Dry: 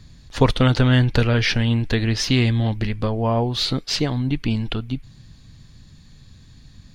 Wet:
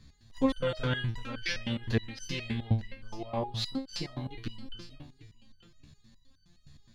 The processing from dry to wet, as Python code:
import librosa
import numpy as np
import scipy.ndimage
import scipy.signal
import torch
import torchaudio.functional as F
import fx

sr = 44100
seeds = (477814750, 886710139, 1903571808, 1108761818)

y = x + 10.0 ** (-17.5 / 20.0) * np.pad(x, (int(883 * sr / 1000.0), 0))[:len(x)]
y = fx.resonator_held(y, sr, hz=9.6, low_hz=73.0, high_hz=1500.0)